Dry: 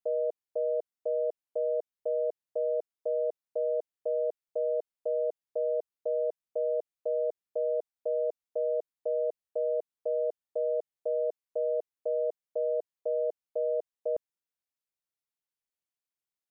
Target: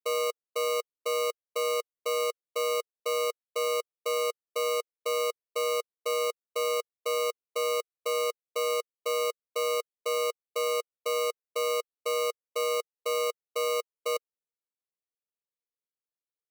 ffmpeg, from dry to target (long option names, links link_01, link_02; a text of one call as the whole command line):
ffmpeg -i in.wav -af "bandpass=frequency=470:width_type=q:width=4.3:csg=0,acrusher=samples=26:mix=1:aa=0.000001,volume=3.5dB" out.wav